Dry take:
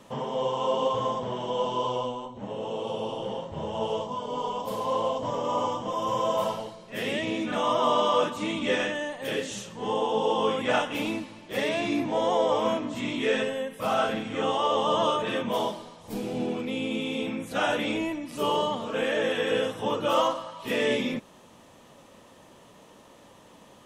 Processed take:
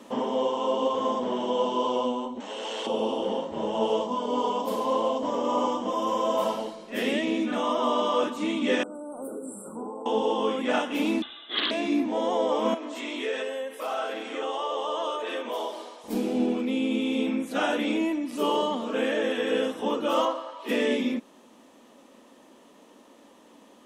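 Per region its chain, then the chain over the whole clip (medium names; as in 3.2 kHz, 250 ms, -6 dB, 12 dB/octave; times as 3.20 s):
2.40–2.87 s: frequency weighting ITU-R 468 + transformer saturation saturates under 1.5 kHz
8.83–10.06 s: peaking EQ 9.8 kHz +12 dB 0.4 oct + compression 20:1, threshold -36 dBFS + brick-wall FIR band-stop 1.5–7.4 kHz
11.22–11.71 s: comb 2.3 ms, depth 38% + frequency inversion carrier 3.8 kHz + loudspeaker Doppler distortion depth 0.21 ms
12.74–16.04 s: high-pass 370 Hz 24 dB/octave + compression 2:1, threshold -37 dBFS
20.25–20.69 s: high-pass 320 Hz 24 dB/octave + treble shelf 5.2 kHz -10.5 dB
whole clip: resonant low shelf 180 Hz -11 dB, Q 3; gain riding within 3 dB 0.5 s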